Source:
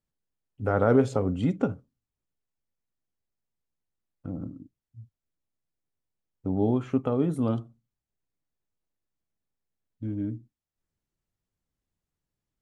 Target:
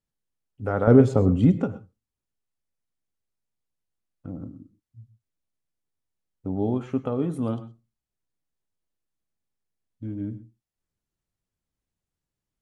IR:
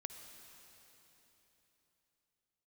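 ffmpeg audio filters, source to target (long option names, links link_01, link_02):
-filter_complex "[0:a]asettb=1/sr,asplit=3[link_01][link_02][link_03];[link_01]atrim=end=0.874[link_04];[link_02]atrim=start=0.87:end=1.61,asetpts=PTS-STARTPTS,afade=type=in:duration=0.004:curve=qsin,afade=type=out:start_time=0.736:duration=0.004:curve=qsin,lowshelf=frequency=460:gain=10.5[link_05];[link_03]atrim=start=1.606[link_06];[link_04][link_05]acrossfade=duration=0.004:curve1=hsin:curve2=qsin[link_07];[link_07][link_06]acrossfade=duration=0.004:curve1=qsin:curve2=hsin[link_08];[1:a]atrim=start_sample=2205,atrim=end_sample=3087,asetrate=22932,aresample=44100[link_09];[link_08][link_09]afir=irnorm=-1:irlink=0"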